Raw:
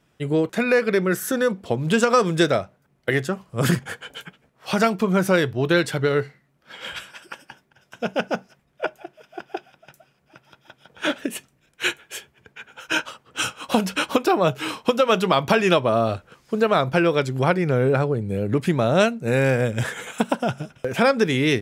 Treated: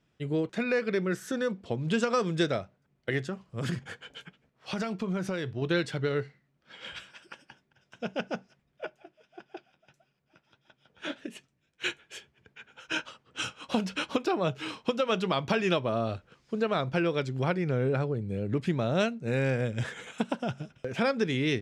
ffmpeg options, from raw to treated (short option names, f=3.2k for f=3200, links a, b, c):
-filter_complex "[0:a]asettb=1/sr,asplit=3[a][b][c];[a]atrim=end=3.184[d];[b]atrim=start=3.18:end=5.62,asetpts=PTS-STARTPTS,afade=t=in:d=0.004:c=qsin,afade=t=out:st=2.436:d=0.004:c=qsin,acompressor=threshold=-19dB:ratio=6:attack=3.2:release=140:knee=1:detection=peak[e];[c]atrim=start=5.616[f];[d][e]acrossfade=d=0.004:c1=hsin:c2=qsin[g];[g][f]acrossfade=d=0.004:c1=qsin:c2=hsin,asettb=1/sr,asplit=3[h][i][j];[h]atrim=end=8.844[k];[i]atrim=start=8.84:end=11.84,asetpts=PTS-STARTPTS,afade=t=in:d=0.004:c=qsin,afade=t=out:st=2.996:d=0.004:c=qsin,flanger=delay=4.7:depth=7:regen=-43:speed=1.6:shape=sinusoidal[l];[j]atrim=start=11.836[m];[k][l]acrossfade=d=0.004:c1=hsin:c2=qsin[n];[n][m]acrossfade=d=0.004:c1=qsin:c2=hsin,lowpass=5.9k,equalizer=f=930:t=o:w=2.3:g=-4.5,volume=-6.5dB"